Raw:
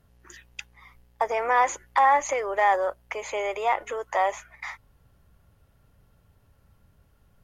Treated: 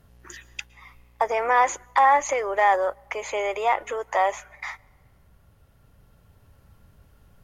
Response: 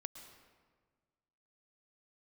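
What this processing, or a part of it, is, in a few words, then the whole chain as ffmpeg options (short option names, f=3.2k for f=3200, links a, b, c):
ducked reverb: -filter_complex "[0:a]asplit=3[a][b][c];[1:a]atrim=start_sample=2205[d];[b][d]afir=irnorm=-1:irlink=0[e];[c]apad=whole_len=327890[f];[e][f]sidechaincompress=threshold=-43dB:ratio=5:attack=39:release=1440,volume=0dB[g];[a][g]amix=inputs=2:normalize=0,volume=1.5dB"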